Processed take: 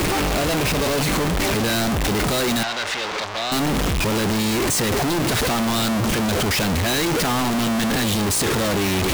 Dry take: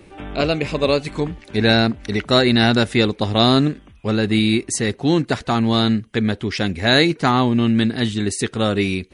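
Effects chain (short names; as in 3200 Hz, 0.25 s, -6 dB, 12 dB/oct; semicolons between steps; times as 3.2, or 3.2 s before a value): infinite clipping; buzz 60 Hz, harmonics 21, -33 dBFS -1 dB/oct; 2.63–3.52 three-band isolator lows -19 dB, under 530 Hz, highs -23 dB, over 6100 Hz; gain -2 dB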